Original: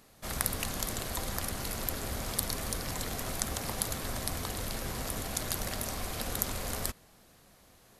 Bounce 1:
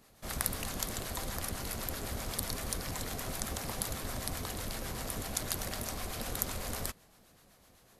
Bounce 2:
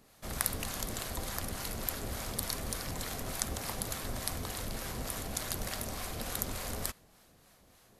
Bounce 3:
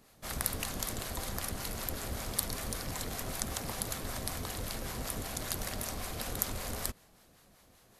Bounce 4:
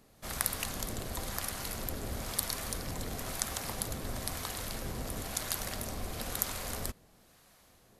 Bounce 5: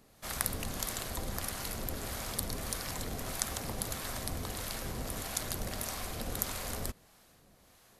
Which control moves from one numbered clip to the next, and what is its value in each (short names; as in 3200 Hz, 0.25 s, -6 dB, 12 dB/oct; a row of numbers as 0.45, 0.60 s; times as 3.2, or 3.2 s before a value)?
harmonic tremolo, rate: 7.9, 3.4, 5.2, 1, 1.6 Hz